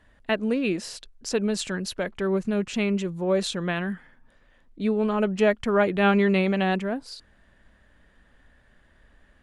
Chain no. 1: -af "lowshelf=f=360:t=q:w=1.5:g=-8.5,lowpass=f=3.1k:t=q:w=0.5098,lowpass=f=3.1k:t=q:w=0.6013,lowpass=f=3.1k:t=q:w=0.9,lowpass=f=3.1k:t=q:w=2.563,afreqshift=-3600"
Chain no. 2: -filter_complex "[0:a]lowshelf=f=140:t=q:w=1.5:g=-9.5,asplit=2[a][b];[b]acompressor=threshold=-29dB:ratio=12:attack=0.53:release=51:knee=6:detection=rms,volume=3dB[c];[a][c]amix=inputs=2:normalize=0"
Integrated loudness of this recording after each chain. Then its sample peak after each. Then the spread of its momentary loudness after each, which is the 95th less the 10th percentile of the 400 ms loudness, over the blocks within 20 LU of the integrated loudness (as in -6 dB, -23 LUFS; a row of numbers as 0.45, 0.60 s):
-23.5, -21.5 LUFS; -8.0, -7.0 dBFS; 11, 9 LU